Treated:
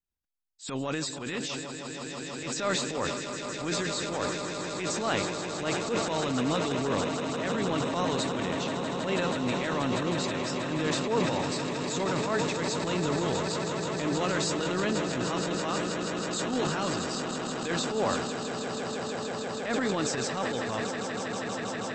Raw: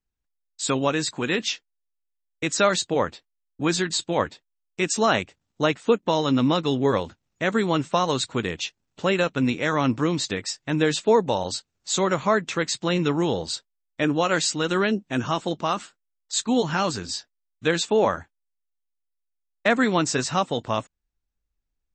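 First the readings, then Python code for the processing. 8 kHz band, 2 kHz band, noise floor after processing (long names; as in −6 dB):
−4.5 dB, −5.5 dB, −38 dBFS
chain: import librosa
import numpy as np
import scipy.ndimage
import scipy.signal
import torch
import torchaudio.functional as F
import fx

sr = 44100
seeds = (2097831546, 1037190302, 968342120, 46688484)

y = fx.echo_swell(x, sr, ms=160, loudest=8, wet_db=-11.5)
y = fx.transient(y, sr, attack_db=-11, sustain_db=7)
y = y * 10.0 ** (-8.0 / 20.0)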